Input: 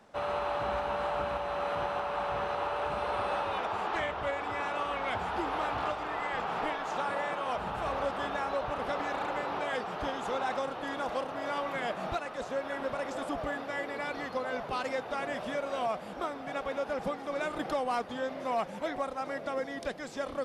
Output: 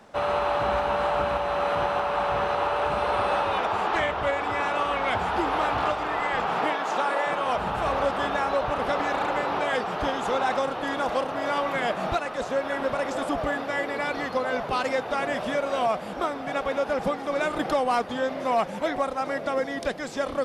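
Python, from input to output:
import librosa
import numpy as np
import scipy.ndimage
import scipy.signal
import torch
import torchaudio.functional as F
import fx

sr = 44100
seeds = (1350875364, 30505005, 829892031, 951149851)

y = fx.highpass(x, sr, hz=fx.line((6.54, 90.0), (7.25, 310.0)), slope=24, at=(6.54, 7.25), fade=0.02)
y = F.gain(torch.from_numpy(y), 7.5).numpy()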